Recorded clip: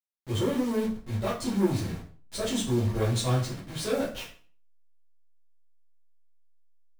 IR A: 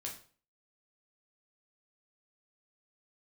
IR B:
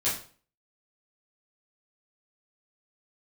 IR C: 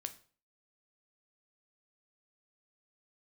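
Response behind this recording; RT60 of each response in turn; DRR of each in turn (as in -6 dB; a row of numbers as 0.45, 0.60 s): B; 0.45, 0.45, 0.45 s; -1.5, -10.0, 8.5 dB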